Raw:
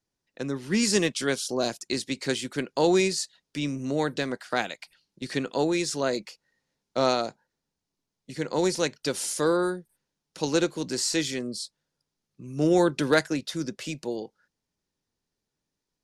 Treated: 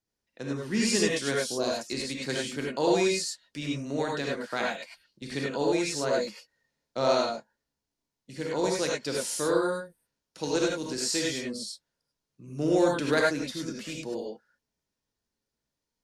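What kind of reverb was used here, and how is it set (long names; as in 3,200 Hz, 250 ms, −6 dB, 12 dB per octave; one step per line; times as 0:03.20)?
reverb whose tail is shaped and stops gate 120 ms rising, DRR −2.5 dB
level −5.5 dB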